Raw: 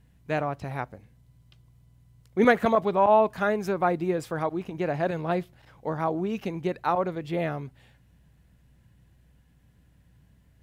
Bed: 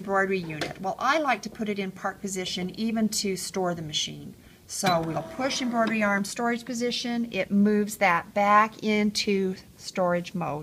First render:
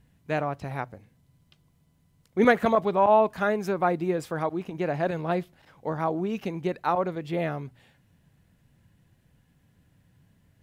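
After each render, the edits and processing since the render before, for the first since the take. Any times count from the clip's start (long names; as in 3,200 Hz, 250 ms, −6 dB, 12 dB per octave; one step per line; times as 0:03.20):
hum removal 60 Hz, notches 2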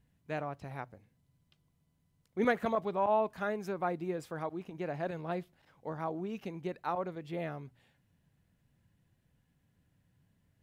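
level −9.5 dB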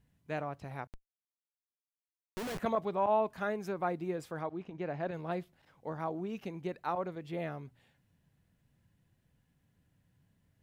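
0:00.87–0:02.59: comparator with hysteresis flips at −40 dBFS
0:04.41–0:05.14: high-frequency loss of the air 100 metres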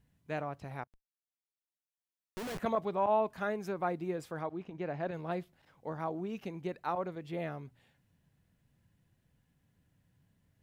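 0:00.84–0:02.74: fade in, from −20.5 dB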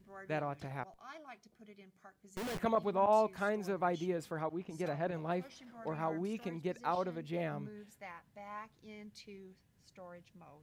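mix in bed −27.5 dB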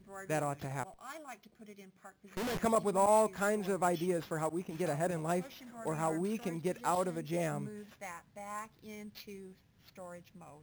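sample-rate reduction 8,700 Hz, jitter 0%
in parallel at −5 dB: soft clipping −33 dBFS, distortion −8 dB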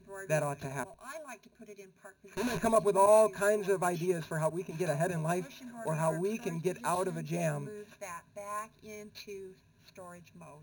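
EQ curve with evenly spaced ripples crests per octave 1.5, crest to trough 13 dB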